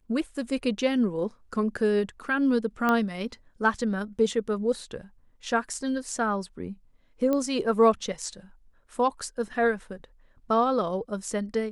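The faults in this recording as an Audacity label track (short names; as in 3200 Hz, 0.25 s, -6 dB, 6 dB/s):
2.890000	2.890000	pop -12 dBFS
7.330000	7.330000	pop -15 dBFS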